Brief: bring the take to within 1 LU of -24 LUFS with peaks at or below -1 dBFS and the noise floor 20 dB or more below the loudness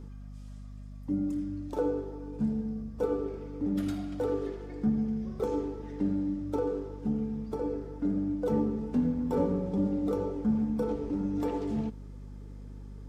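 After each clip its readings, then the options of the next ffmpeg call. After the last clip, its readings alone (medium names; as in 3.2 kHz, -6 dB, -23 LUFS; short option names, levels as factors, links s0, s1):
hum 50 Hz; highest harmonic 250 Hz; hum level -41 dBFS; loudness -32.0 LUFS; peak level -17.0 dBFS; loudness target -24.0 LUFS
-> -af "bandreject=f=50:t=h:w=4,bandreject=f=100:t=h:w=4,bandreject=f=150:t=h:w=4,bandreject=f=200:t=h:w=4,bandreject=f=250:t=h:w=4"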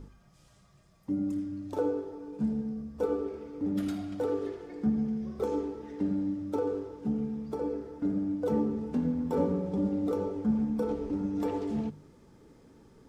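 hum not found; loudness -32.0 LUFS; peak level -17.0 dBFS; loudness target -24.0 LUFS
-> -af "volume=2.51"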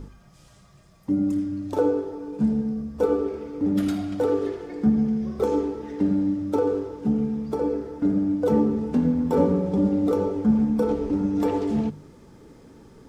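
loudness -24.0 LUFS; peak level -9.0 dBFS; noise floor -53 dBFS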